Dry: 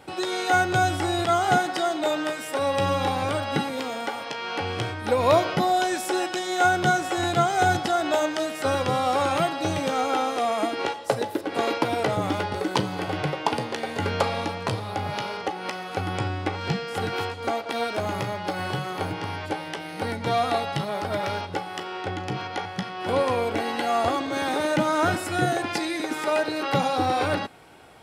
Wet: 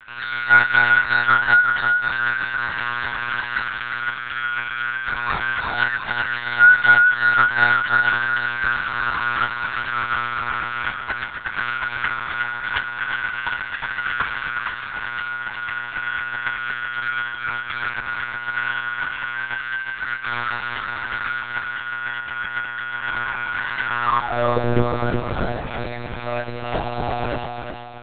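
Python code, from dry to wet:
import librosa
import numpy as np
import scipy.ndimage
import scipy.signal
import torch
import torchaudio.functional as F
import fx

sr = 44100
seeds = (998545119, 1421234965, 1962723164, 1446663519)

y = fx.filter_sweep_highpass(x, sr, from_hz=1500.0, to_hz=72.0, start_s=23.99, end_s=25.37, q=7.3)
y = fx.echo_thinned(y, sr, ms=368, feedback_pct=47, hz=210.0, wet_db=-5)
y = fx.lpc_monotone(y, sr, seeds[0], pitch_hz=120.0, order=10)
y = y * 10.0 ** (-2.5 / 20.0)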